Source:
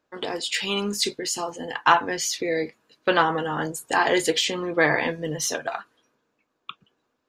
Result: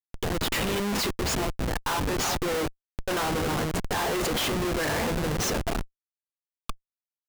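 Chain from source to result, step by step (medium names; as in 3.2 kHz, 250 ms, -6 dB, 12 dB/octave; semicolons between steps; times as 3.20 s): frequency-shifting echo 370 ms, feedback 56%, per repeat -130 Hz, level -15.5 dB; Schmitt trigger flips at -27.5 dBFS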